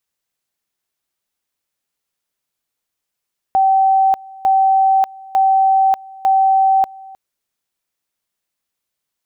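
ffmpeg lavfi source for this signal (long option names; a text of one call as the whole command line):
ffmpeg -f lavfi -i "aevalsrc='pow(10,(-9.5-23.5*gte(mod(t,0.9),0.59))/20)*sin(2*PI*771*t)':duration=3.6:sample_rate=44100" out.wav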